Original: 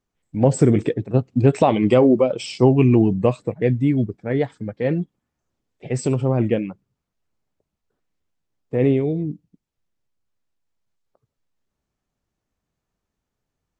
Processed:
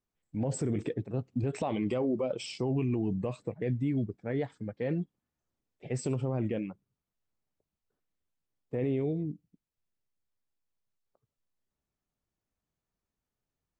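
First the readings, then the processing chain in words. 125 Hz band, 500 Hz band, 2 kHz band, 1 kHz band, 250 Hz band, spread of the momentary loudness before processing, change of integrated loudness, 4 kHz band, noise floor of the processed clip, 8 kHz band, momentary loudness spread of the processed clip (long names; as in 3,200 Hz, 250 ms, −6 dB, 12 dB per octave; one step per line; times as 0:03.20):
−13.0 dB, −14.5 dB, −12.5 dB, −16.0 dB, −13.0 dB, 12 LU, −14.0 dB, −10.5 dB, below −85 dBFS, −9.0 dB, 8 LU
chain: brickwall limiter −13 dBFS, peak gain reduction 11 dB
level −9 dB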